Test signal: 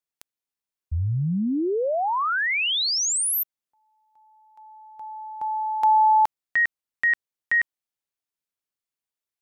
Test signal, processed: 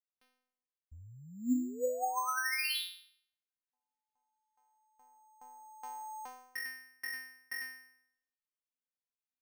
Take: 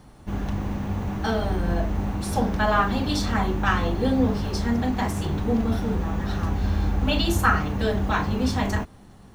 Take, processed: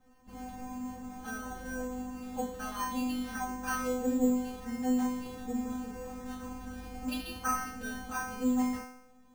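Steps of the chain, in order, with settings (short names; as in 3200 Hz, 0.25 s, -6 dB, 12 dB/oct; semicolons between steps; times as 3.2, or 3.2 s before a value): metallic resonator 250 Hz, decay 0.77 s, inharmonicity 0.002; careless resampling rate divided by 6×, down filtered, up hold; gain +7 dB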